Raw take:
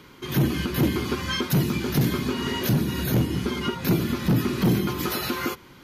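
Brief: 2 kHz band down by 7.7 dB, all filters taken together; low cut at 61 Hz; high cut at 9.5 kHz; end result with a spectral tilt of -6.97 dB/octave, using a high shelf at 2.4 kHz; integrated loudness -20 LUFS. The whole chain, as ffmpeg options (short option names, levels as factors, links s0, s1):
-af "highpass=61,lowpass=9500,equalizer=f=2000:t=o:g=-8,highshelf=f=2400:g=-4.5,volume=1.88"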